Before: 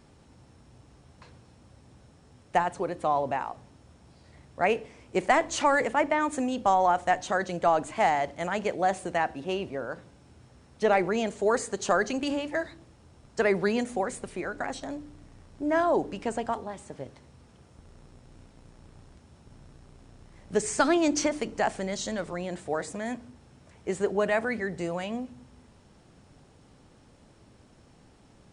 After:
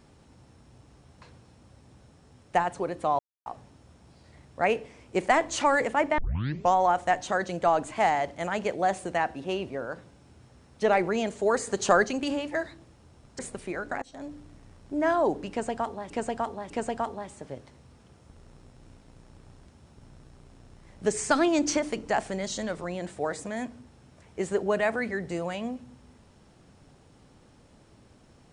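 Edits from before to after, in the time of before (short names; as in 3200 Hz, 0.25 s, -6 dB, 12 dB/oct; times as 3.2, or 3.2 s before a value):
3.19–3.46 mute
6.18 tape start 0.55 s
11.67–12.04 gain +3.5 dB
13.39–14.08 cut
14.71–15.03 fade in, from -23.5 dB
16.19–16.79 loop, 3 plays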